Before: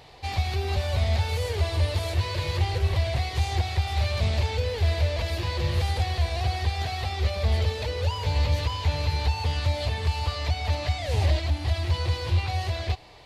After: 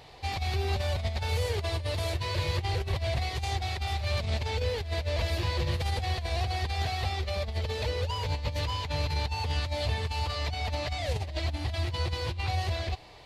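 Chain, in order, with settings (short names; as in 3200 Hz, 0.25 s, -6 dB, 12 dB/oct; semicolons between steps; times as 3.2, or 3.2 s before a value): negative-ratio compressor -25 dBFS, ratio -0.5; gain -3 dB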